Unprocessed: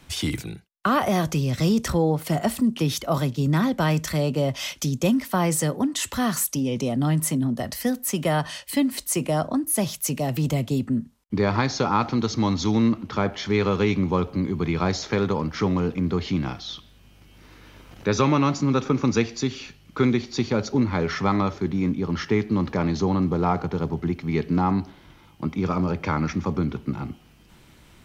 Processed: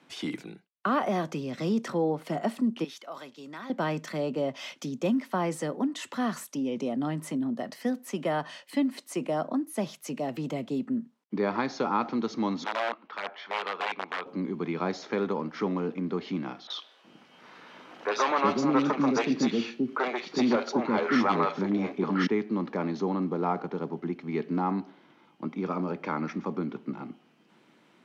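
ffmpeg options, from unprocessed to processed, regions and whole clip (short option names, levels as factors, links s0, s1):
-filter_complex "[0:a]asettb=1/sr,asplit=3[s0][s1][s2];[s0]atrim=end=2.844[s3];[s1]atrim=start=2.84:end=3.7,asetpts=PTS-STARTPTS,afade=t=in:d=0.004:c=qsin,afade=t=out:st=0.856:d=0.004:c=qsin,highpass=f=1300:p=1,acompressor=threshold=0.0224:ratio=2:attack=3.2:release=140:knee=1:detection=peak[s4];[s2]atrim=start=3.696[s5];[s3][s4]acrossfade=d=0.004:c1=hsin:c2=qsin[s6];[s6][s5]acrossfade=d=0.004:c1=qsin:c2=hsin,asettb=1/sr,asplit=3[s7][s8][s9];[s7]atrim=end=12.644[s10];[s8]atrim=start=12.64:end=14.26,asetpts=PTS-STARTPTS,afade=t=in:d=0.004:c=qsin,afade=t=out:st=1.616:d=0.004:c=qsin,aeval=exprs='(mod(5.31*val(0)+1,2)-1)/5.31':c=same,acrossover=split=550 4300:gain=0.0794 1 0.0891[s11][s12][s13];[s11][s12][s13]amix=inputs=3:normalize=0[s14];[s9]atrim=start=14.256[s15];[s10][s14]acrossfade=d=0.004:c1=hsin:c2=qsin[s16];[s16][s15]acrossfade=d=0.004:c1=qsin:c2=hsin,asettb=1/sr,asplit=3[s17][s18][s19];[s17]atrim=end=16.674[s20];[s18]atrim=start=16.67:end=22.27,asetpts=PTS-STARTPTS,afade=t=in:d=0.004:c=qsin,afade=t=out:st=5.596:d=0.004:c=qsin,aeval=exprs='0.398*sin(PI/2*2*val(0)/0.398)':c=same,asplit=2[s21][s22];[s22]highpass=f=720:p=1,volume=1.58,asoftclip=type=tanh:threshold=0.398[s23];[s21][s23]amix=inputs=2:normalize=0,lowpass=f=4500:p=1,volume=0.501,acrossover=split=420|2100[s24][s25][s26];[s26]adelay=30[s27];[s24]adelay=370[s28];[s28][s25][s27]amix=inputs=3:normalize=0,atrim=end_sample=246960[s29];[s19]atrim=start=22.266[s30];[s20][s29]acrossfade=d=0.004:c1=hsin:c2=qsin[s31];[s31][s30]acrossfade=d=0.004:c1=qsin:c2=hsin,highpass=f=200:w=0.5412,highpass=f=200:w=1.3066,aemphasis=mode=reproduction:type=75fm,volume=0.562"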